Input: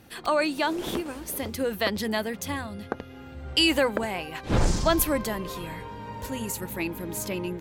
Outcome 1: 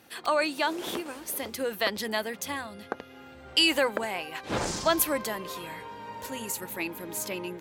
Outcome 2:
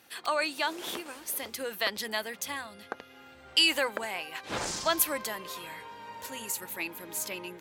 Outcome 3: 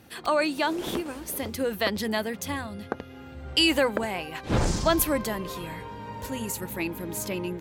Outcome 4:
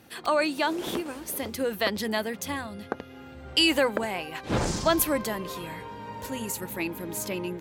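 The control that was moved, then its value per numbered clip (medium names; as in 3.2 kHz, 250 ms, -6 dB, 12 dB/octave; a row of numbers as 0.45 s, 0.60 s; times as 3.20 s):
high-pass, cutoff frequency: 460 Hz, 1.2 kHz, 45 Hz, 150 Hz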